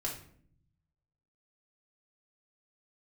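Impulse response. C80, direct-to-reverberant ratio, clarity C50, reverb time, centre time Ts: 11.5 dB, −4.5 dB, 6.5 dB, 0.60 s, 26 ms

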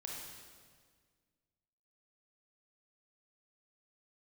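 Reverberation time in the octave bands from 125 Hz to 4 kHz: 2.1, 2.1, 1.8, 1.6, 1.6, 1.5 seconds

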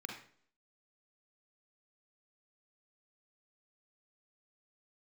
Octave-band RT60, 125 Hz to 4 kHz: 0.55, 0.60, 0.60, 0.50, 0.50, 0.50 seconds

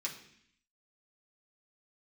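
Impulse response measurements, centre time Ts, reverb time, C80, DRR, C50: 20 ms, 0.65 s, 12.0 dB, −3.5 dB, 9.0 dB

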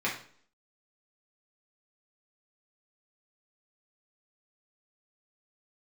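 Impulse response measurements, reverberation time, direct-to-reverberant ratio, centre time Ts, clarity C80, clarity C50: 0.55 s, −5.5 dB, 27 ms, 12.0 dB, 7.0 dB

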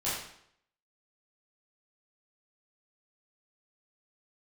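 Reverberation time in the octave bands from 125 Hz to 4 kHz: 0.70, 0.70, 0.70, 0.70, 0.65, 0.60 seconds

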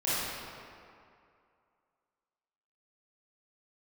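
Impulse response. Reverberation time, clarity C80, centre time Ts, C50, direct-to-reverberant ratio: 2.4 s, −2.5 dB, 169 ms, −6.0 dB, −12.0 dB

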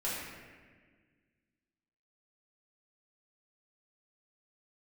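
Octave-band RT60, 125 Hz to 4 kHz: 2.2, 2.2, 1.7, 1.4, 1.7, 1.2 seconds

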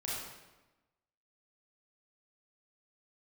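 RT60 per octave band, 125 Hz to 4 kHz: 1.2, 1.2, 1.1, 1.1, 1.0, 0.85 seconds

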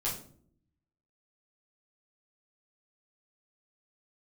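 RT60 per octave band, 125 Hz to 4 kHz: 1.1, 0.95, 0.70, 0.45, 0.35, 0.35 seconds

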